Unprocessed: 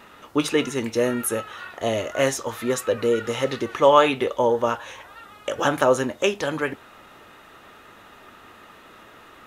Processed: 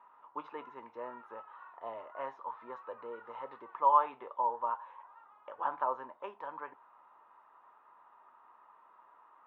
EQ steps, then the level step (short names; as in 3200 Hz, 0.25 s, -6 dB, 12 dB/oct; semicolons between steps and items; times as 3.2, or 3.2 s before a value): band-pass 980 Hz, Q 8.5; air absorption 280 m; 0.0 dB